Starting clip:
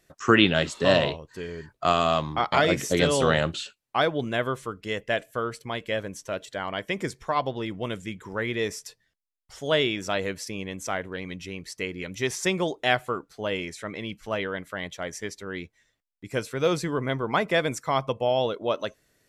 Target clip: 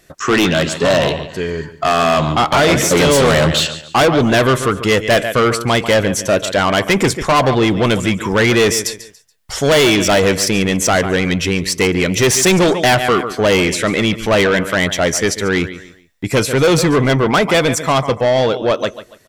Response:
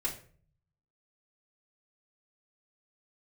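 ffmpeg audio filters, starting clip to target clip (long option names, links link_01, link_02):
-filter_complex "[0:a]aecho=1:1:142|284|426:0.15|0.0464|0.0144,asplit=2[link_01][link_02];[link_02]alimiter=limit=-13dB:level=0:latency=1:release=274,volume=-1dB[link_03];[link_01][link_03]amix=inputs=2:normalize=0,asoftclip=type=hard:threshold=-10.5dB,dynaudnorm=framelen=340:gausssize=17:maxgain=10dB,asoftclip=type=tanh:threshold=-17dB,volume=8.5dB"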